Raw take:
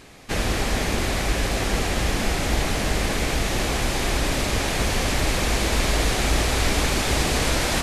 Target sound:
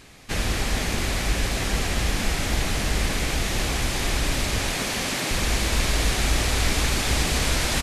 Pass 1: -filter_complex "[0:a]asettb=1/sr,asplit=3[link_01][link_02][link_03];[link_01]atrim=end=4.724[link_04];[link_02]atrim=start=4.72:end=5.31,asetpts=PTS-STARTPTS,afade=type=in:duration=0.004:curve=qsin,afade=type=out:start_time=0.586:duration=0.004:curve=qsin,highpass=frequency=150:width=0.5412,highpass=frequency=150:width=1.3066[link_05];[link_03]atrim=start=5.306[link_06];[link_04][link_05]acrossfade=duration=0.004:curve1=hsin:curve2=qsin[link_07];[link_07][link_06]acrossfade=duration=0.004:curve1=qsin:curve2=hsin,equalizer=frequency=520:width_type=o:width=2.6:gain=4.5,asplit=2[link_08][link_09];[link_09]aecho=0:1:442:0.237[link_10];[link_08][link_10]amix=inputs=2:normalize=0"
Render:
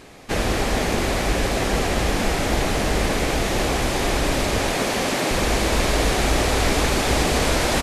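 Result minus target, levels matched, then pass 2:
500 Hz band +6.0 dB
-filter_complex "[0:a]asettb=1/sr,asplit=3[link_01][link_02][link_03];[link_01]atrim=end=4.724[link_04];[link_02]atrim=start=4.72:end=5.31,asetpts=PTS-STARTPTS,afade=type=in:duration=0.004:curve=qsin,afade=type=out:start_time=0.586:duration=0.004:curve=qsin,highpass=frequency=150:width=0.5412,highpass=frequency=150:width=1.3066[link_05];[link_03]atrim=start=5.306[link_06];[link_04][link_05]acrossfade=duration=0.004:curve1=hsin:curve2=qsin[link_07];[link_07][link_06]acrossfade=duration=0.004:curve1=qsin:curve2=hsin,equalizer=frequency=520:width_type=o:width=2.6:gain=-5,asplit=2[link_08][link_09];[link_09]aecho=0:1:442:0.237[link_10];[link_08][link_10]amix=inputs=2:normalize=0"

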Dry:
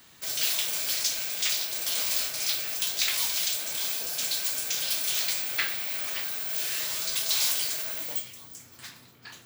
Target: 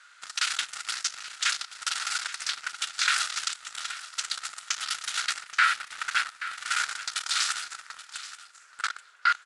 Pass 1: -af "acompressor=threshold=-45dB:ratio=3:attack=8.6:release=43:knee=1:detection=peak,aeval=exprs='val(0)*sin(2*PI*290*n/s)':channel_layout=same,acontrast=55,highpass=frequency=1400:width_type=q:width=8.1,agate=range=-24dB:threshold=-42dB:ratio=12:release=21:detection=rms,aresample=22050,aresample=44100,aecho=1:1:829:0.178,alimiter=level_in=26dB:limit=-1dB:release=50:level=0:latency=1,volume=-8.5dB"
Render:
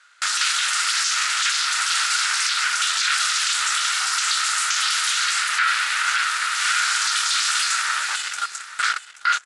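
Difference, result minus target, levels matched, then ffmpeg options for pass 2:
downward compressor: peak gain reduction −5.5 dB
-af "acompressor=threshold=-53.5dB:ratio=3:attack=8.6:release=43:knee=1:detection=peak,aeval=exprs='val(0)*sin(2*PI*290*n/s)':channel_layout=same,acontrast=55,highpass=frequency=1400:width_type=q:width=8.1,agate=range=-24dB:threshold=-42dB:ratio=12:release=21:detection=rms,aresample=22050,aresample=44100,aecho=1:1:829:0.178,alimiter=level_in=26dB:limit=-1dB:release=50:level=0:latency=1,volume=-8.5dB"

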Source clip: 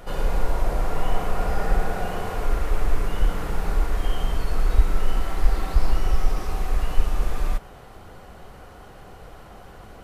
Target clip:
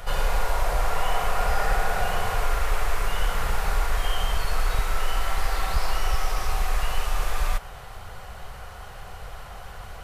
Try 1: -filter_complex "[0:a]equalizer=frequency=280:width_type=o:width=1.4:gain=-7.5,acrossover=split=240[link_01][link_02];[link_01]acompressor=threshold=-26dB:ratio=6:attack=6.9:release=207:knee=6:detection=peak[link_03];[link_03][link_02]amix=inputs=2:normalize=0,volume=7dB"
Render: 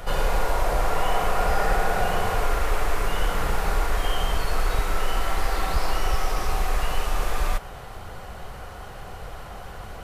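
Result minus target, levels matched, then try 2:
250 Hz band +5.5 dB
-filter_complex "[0:a]equalizer=frequency=280:width_type=o:width=1.4:gain=-18,acrossover=split=240[link_01][link_02];[link_01]acompressor=threshold=-26dB:ratio=6:attack=6.9:release=207:knee=6:detection=peak[link_03];[link_03][link_02]amix=inputs=2:normalize=0,volume=7dB"

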